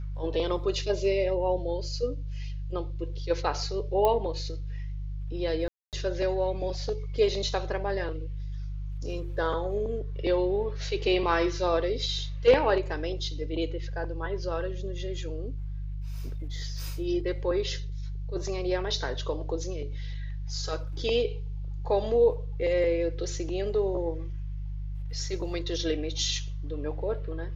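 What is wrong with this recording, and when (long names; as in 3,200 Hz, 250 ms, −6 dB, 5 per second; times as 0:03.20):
mains hum 50 Hz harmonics 3 −34 dBFS
0:04.05: click −13 dBFS
0:05.68–0:05.93: drop-out 248 ms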